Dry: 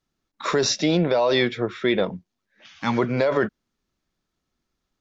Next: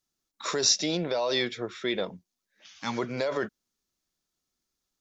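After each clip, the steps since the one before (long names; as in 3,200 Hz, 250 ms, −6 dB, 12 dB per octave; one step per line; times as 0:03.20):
bass and treble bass −4 dB, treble +13 dB
level −8 dB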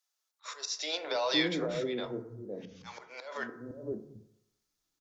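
volume swells 283 ms
three-band delay without the direct sound highs, mids, lows 510/720 ms, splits 160/520 Hz
feedback delay network reverb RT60 0.84 s, low-frequency decay 0.85×, high-frequency decay 0.35×, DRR 8 dB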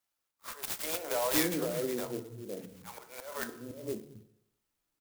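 converter with an unsteady clock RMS 0.081 ms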